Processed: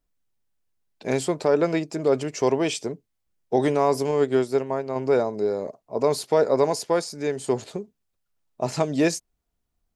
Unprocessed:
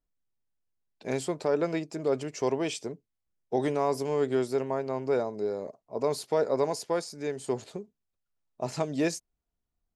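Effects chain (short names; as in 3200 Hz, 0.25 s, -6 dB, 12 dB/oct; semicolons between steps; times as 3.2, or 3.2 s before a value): 4.11–4.96 upward expander 1.5:1, over -34 dBFS; gain +6.5 dB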